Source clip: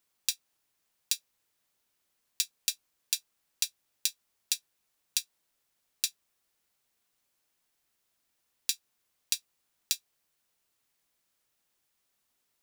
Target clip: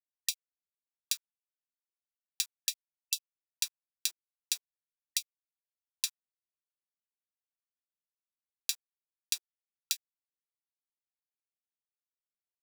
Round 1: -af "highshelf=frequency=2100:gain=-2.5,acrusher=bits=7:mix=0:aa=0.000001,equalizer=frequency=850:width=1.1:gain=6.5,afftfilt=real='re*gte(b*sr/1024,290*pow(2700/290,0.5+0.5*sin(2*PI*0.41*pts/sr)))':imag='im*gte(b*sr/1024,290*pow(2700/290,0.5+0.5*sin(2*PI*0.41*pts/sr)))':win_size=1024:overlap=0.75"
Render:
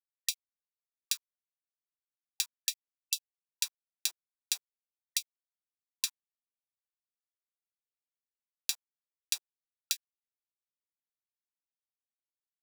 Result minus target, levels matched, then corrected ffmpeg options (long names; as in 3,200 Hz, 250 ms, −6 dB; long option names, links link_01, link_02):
1,000 Hz band +6.0 dB
-af "highshelf=frequency=2100:gain=-2.5,acrusher=bits=7:mix=0:aa=0.000001,equalizer=frequency=850:width=1.1:gain=-2,afftfilt=real='re*gte(b*sr/1024,290*pow(2700/290,0.5+0.5*sin(2*PI*0.41*pts/sr)))':imag='im*gte(b*sr/1024,290*pow(2700/290,0.5+0.5*sin(2*PI*0.41*pts/sr)))':win_size=1024:overlap=0.75"